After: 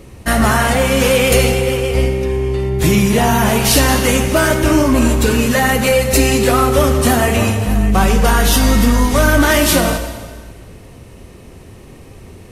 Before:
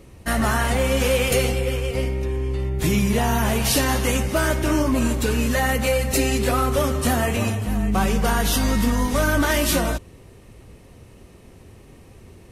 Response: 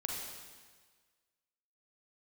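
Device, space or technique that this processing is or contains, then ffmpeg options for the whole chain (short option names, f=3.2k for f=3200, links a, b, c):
saturated reverb return: -filter_complex "[0:a]asplit=2[a][b];[1:a]atrim=start_sample=2205[c];[b][c]afir=irnorm=-1:irlink=0,asoftclip=type=tanh:threshold=-10.5dB,volume=-3.5dB[d];[a][d]amix=inputs=2:normalize=0,volume=4dB"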